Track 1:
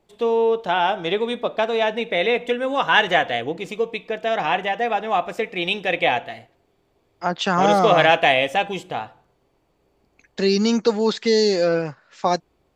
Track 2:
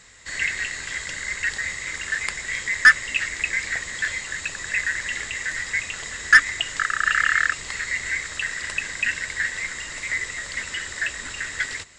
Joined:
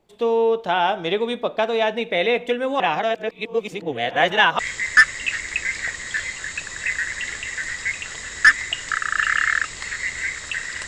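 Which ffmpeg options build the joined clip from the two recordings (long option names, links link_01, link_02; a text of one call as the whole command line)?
ffmpeg -i cue0.wav -i cue1.wav -filter_complex "[0:a]apad=whole_dur=10.87,atrim=end=10.87,asplit=2[link_01][link_02];[link_01]atrim=end=2.802[link_03];[link_02]atrim=start=2.798:end=4.592,asetpts=PTS-STARTPTS,areverse[link_04];[1:a]atrim=start=2.468:end=8.75[link_05];[link_03][link_04]acrossfade=duration=0.004:curve1=hsin:curve2=hsin[link_06];[link_06][link_05]acrossfade=duration=0.004:curve1=hsin:curve2=hsin" out.wav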